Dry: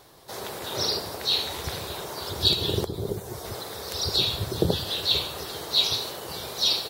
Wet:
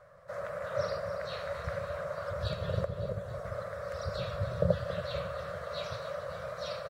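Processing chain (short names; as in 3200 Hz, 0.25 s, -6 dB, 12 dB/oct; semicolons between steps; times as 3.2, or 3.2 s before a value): EQ curve 180 Hz 0 dB, 280 Hz -27 dB, 400 Hz -18 dB, 570 Hz +13 dB, 840 Hz -14 dB, 1200 Hz +6 dB, 1900 Hz 0 dB, 3500 Hz -21 dB, 7700 Hz -17 dB, 14000 Hz -28 dB; on a send: feedback echo 0.278 s, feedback 59%, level -12 dB; on the sum: gain -3.5 dB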